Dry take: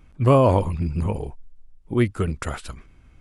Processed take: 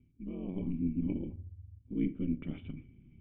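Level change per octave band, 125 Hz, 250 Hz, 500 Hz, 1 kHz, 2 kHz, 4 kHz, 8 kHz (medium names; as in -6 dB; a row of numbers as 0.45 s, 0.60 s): -18.0 dB, -8.0 dB, -25.0 dB, under -35 dB, -22.0 dB, under -20 dB, under -35 dB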